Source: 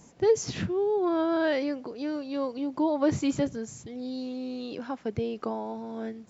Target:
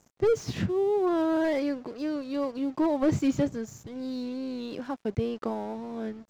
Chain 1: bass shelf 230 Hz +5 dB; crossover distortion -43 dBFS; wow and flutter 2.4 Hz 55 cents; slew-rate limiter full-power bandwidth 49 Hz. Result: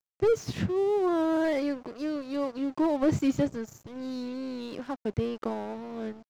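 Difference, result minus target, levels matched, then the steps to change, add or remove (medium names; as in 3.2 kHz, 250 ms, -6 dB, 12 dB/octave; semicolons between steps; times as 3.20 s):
crossover distortion: distortion +6 dB
change: crossover distortion -49.5 dBFS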